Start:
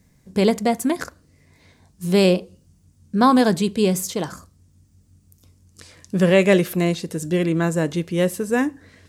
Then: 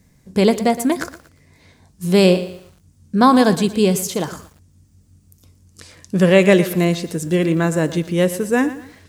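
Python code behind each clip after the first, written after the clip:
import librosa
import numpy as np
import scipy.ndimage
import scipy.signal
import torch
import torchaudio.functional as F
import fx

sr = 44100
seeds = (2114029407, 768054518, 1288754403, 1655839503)

y = fx.echo_crushed(x, sr, ms=117, feedback_pct=35, bits=7, wet_db=-14.0)
y = y * librosa.db_to_amplitude(3.0)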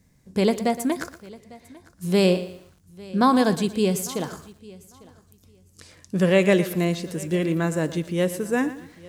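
y = fx.echo_feedback(x, sr, ms=850, feedback_pct=18, wet_db=-22)
y = y * librosa.db_to_amplitude(-6.0)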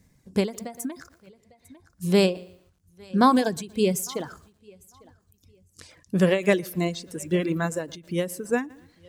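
y = fx.dereverb_blind(x, sr, rt60_s=2.0)
y = fx.end_taper(y, sr, db_per_s=160.0)
y = y * librosa.db_to_amplitude(1.0)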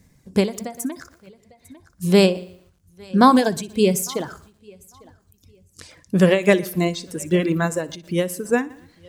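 y = fx.echo_feedback(x, sr, ms=61, feedback_pct=42, wet_db=-20.5)
y = y * librosa.db_to_amplitude(5.0)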